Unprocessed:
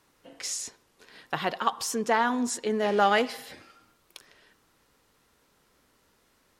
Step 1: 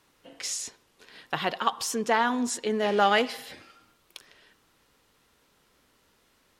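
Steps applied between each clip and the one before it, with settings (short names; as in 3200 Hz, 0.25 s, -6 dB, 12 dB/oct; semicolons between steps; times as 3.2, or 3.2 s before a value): bell 3100 Hz +3.5 dB 0.93 oct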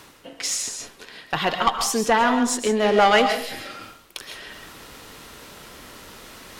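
tube stage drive 15 dB, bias 0.4; reverb RT60 0.35 s, pre-delay 95 ms, DRR 7 dB; reverse; upward compressor, threshold -36 dBFS; reverse; gain +8 dB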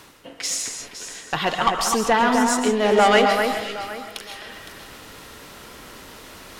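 echo with dull and thin repeats by turns 0.256 s, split 2400 Hz, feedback 50%, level -4.5 dB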